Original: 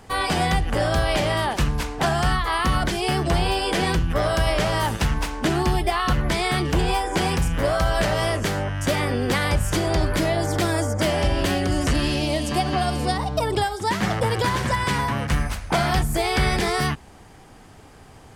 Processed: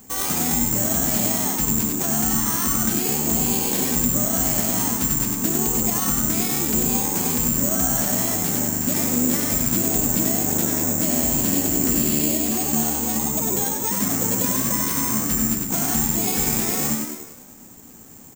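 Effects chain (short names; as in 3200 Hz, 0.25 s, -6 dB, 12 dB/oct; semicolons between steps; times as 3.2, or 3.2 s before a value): limiter -15 dBFS, peak gain reduction 4 dB; on a send: frequency-shifting echo 96 ms, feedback 56%, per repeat +75 Hz, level -3.5 dB; on the sum: careless resampling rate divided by 6×, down none, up zero stuff; bell 240 Hz +14 dB 0.82 oct; gain -9 dB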